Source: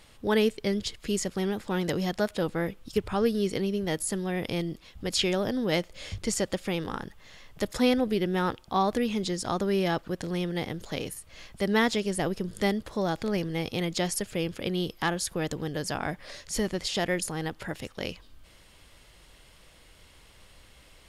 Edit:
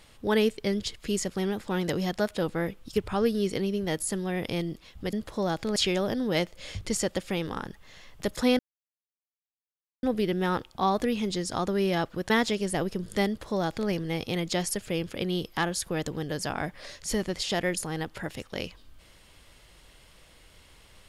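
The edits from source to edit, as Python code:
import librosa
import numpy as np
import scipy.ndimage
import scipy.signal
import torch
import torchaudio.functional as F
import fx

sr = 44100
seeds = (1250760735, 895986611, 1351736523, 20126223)

y = fx.edit(x, sr, fx.insert_silence(at_s=7.96, length_s=1.44),
    fx.cut(start_s=10.23, length_s=1.52),
    fx.duplicate(start_s=12.72, length_s=0.63, to_s=5.13), tone=tone)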